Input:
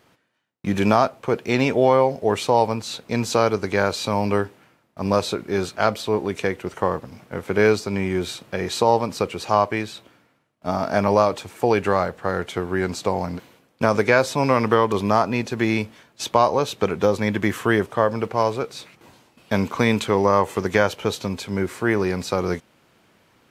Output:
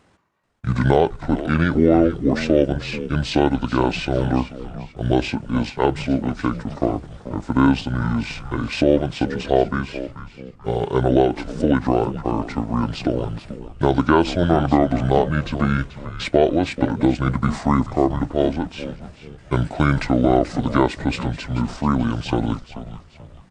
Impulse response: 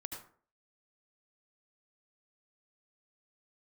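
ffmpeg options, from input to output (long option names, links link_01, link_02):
-filter_complex "[0:a]asetrate=27781,aresample=44100,atempo=1.5874,asplit=5[link_01][link_02][link_03][link_04][link_05];[link_02]adelay=435,afreqshift=-100,volume=-12.5dB[link_06];[link_03]adelay=870,afreqshift=-200,volume=-20.9dB[link_07];[link_04]adelay=1305,afreqshift=-300,volume=-29.3dB[link_08];[link_05]adelay=1740,afreqshift=-400,volume=-37.7dB[link_09];[link_01][link_06][link_07][link_08][link_09]amix=inputs=5:normalize=0,volume=1.5dB"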